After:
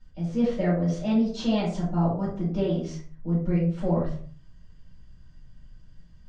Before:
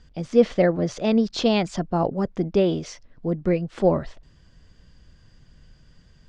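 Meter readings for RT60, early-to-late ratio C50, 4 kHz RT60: 0.50 s, 4.5 dB, 0.25 s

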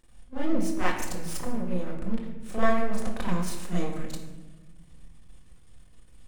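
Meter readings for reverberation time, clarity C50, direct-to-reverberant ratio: 1.2 s, 3.5 dB, -9.0 dB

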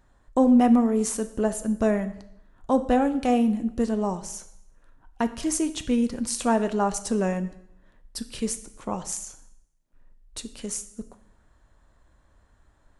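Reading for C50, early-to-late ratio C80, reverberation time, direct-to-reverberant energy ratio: 14.5 dB, 16.5 dB, 0.75 s, 10.0 dB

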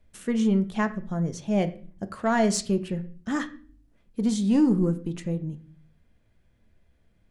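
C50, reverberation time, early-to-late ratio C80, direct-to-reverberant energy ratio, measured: 15.0 dB, 0.45 s, 19.0 dB, 9.0 dB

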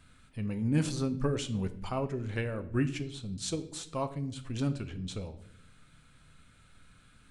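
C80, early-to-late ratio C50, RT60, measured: 17.5 dB, 14.5 dB, 0.70 s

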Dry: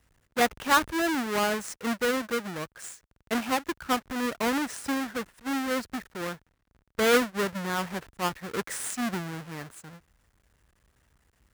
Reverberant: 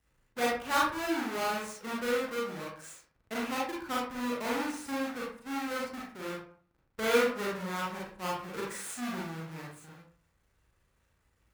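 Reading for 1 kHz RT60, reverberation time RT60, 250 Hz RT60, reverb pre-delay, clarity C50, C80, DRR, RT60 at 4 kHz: 0.50 s, 0.50 s, 0.55 s, 32 ms, 2.0 dB, 7.5 dB, -5.0 dB, 0.30 s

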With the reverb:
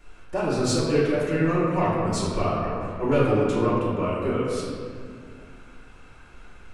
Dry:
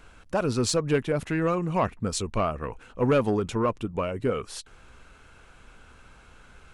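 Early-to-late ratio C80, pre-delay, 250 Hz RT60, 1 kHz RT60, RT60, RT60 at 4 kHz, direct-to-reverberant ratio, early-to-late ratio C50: 0.5 dB, 3 ms, 3.0 s, 2.0 s, 2.2 s, 1.2 s, -10.0 dB, -1.0 dB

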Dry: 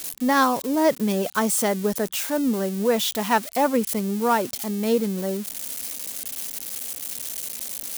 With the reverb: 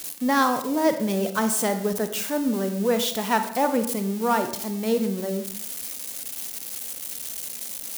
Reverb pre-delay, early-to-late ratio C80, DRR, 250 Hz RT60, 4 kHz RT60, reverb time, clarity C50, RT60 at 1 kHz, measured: 37 ms, 12.5 dB, 8.0 dB, 0.65 s, 0.50 s, 0.65 s, 10.0 dB, 0.65 s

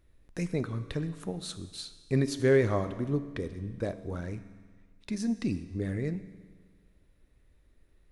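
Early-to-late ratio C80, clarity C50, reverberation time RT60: 14.0 dB, 13.0 dB, 1.6 s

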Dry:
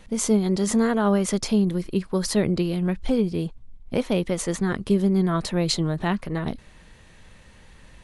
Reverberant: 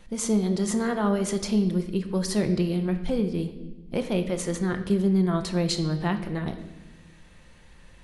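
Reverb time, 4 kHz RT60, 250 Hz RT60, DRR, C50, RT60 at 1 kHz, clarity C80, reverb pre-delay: 1.1 s, 0.95 s, 1.8 s, 6.5 dB, 10.5 dB, 0.90 s, 12.5 dB, 6 ms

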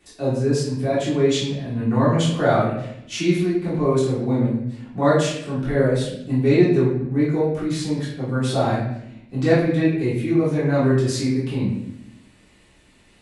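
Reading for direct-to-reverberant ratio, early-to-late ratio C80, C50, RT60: -9.5 dB, 5.5 dB, 2.0 dB, 0.80 s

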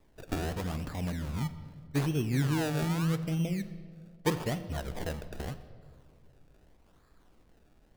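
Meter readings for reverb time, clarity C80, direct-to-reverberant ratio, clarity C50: 2.0 s, 14.0 dB, 11.0 dB, 13.0 dB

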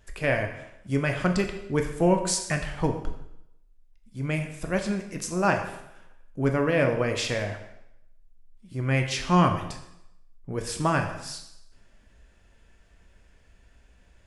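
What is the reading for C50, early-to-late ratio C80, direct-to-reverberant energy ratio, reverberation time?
8.5 dB, 10.5 dB, 4.0 dB, 0.80 s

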